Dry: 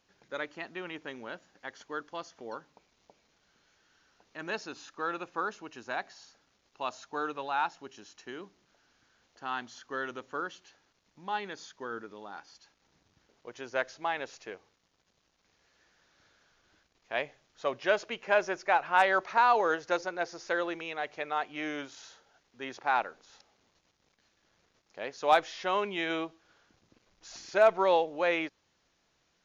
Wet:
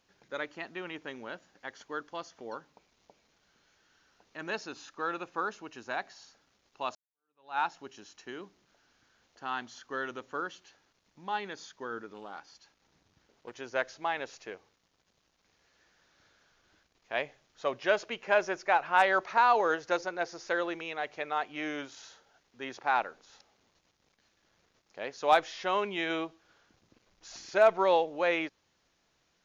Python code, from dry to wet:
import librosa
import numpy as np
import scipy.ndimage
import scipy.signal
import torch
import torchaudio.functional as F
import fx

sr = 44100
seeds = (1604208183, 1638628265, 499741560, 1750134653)

y = fx.doppler_dist(x, sr, depth_ms=0.22, at=(12.14, 13.53))
y = fx.edit(y, sr, fx.fade_in_span(start_s=6.95, length_s=0.63, curve='exp'), tone=tone)